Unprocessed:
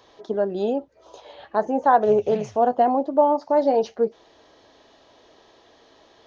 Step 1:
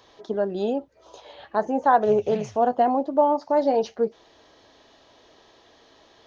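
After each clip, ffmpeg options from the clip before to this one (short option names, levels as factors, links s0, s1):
-af "equalizer=f=510:w=0.55:g=-3,volume=1.12"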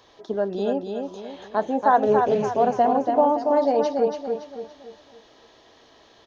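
-af "aecho=1:1:283|566|849|1132|1415:0.562|0.231|0.0945|0.0388|0.0159"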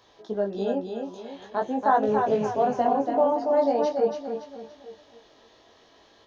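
-af "flanger=delay=18:depth=4.3:speed=0.45"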